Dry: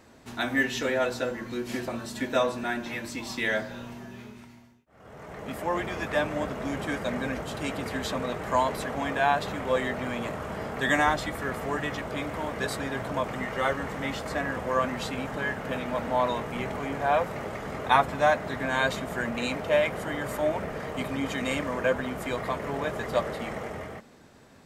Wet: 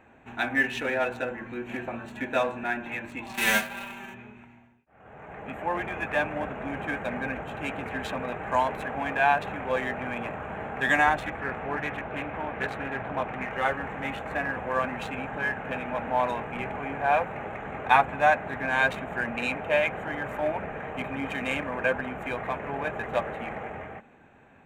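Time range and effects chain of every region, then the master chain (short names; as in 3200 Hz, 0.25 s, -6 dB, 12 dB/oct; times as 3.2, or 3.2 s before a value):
3.33–4.13 spectral whitening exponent 0.3 + comb 5.1 ms, depth 99%
11.27–13.5 LPF 5300 Hz + Doppler distortion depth 0.2 ms
whole clip: Wiener smoothing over 9 samples; thirty-one-band EQ 800 Hz +8 dB, 1600 Hz +7 dB, 2500 Hz +11 dB, 5000 Hz -6 dB; gain -3 dB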